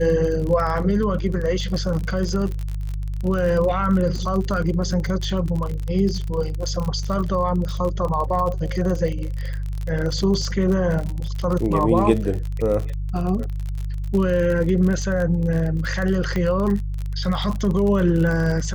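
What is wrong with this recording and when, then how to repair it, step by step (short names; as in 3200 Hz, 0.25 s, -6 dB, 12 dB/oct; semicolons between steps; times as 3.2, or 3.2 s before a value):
crackle 38/s -25 dBFS
hum 50 Hz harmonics 3 -26 dBFS
16.36 pop -13 dBFS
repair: de-click; de-hum 50 Hz, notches 3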